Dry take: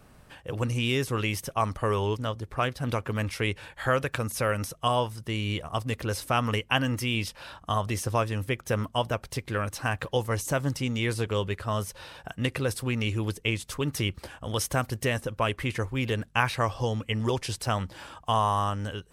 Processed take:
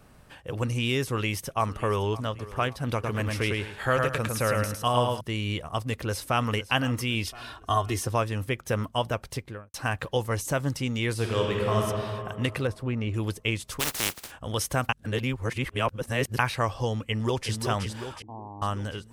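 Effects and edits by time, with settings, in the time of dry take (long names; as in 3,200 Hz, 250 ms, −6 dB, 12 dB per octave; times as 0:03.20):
0:01.03–0:02.13: delay throw 560 ms, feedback 45%, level −17.5 dB
0:02.93–0:05.21: repeating echo 106 ms, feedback 26%, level −3 dB
0:05.88–0:06.50: delay throw 510 ms, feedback 45%, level −15.5 dB
0:07.24–0:08.07: comb filter 2.8 ms, depth 72%
0:09.29–0:09.74: fade out and dull
0:11.15–0:11.81: thrown reverb, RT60 2.5 s, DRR −1.5 dB
0:12.67–0:13.14: low-pass filter 1,100 Hz 6 dB per octave
0:13.79–0:14.30: compressing power law on the bin magnitudes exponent 0.19
0:14.89–0:16.39: reverse
0:17.03–0:17.60: delay throw 370 ms, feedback 60%, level −6 dB
0:18.22–0:18.62: formant resonators in series u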